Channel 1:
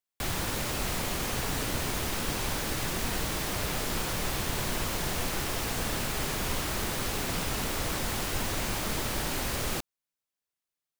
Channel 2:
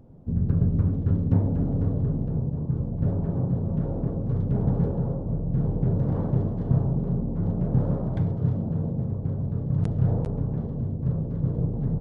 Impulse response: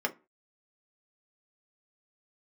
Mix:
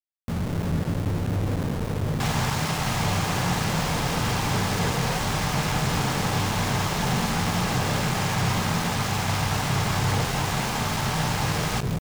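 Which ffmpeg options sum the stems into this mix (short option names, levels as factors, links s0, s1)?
-filter_complex "[0:a]lowpass=f=7700:w=0.5412,lowpass=f=7700:w=1.3066,lowshelf=f=540:t=q:w=3:g=-12,adelay=2000,volume=1.26,asplit=3[s0][s1][s2];[s1]volume=0.188[s3];[s2]volume=0.188[s4];[1:a]asoftclip=type=tanh:threshold=0.0501,volume=1.33,asplit=3[s5][s6][s7];[s6]volume=0.141[s8];[s7]volume=0.562[s9];[2:a]atrim=start_sample=2205[s10];[s3][s8]amix=inputs=2:normalize=0[s11];[s11][s10]afir=irnorm=-1:irlink=0[s12];[s4][s9]amix=inputs=2:normalize=0,aecho=0:1:173:1[s13];[s0][s5][s12][s13]amix=inputs=4:normalize=0,aeval=exprs='val(0)*gte(abs(val(0)),0.0422)':c=same"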